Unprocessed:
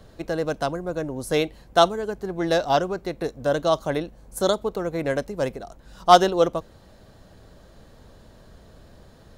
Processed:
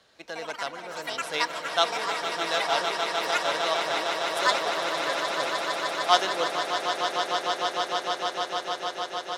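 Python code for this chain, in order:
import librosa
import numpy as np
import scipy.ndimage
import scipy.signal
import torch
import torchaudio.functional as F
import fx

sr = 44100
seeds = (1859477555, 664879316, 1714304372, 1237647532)

y = fx.echo_pitch(x, sr, ms=148, semitones=6, count=3, db_per_echo=-6.0)
y = fx.bandpass_q(y, sr, hz=3200.0, q=0.66)
y = fx.echo_swell(y, sr, ms=152, loudest=8, wet_db=-9.0)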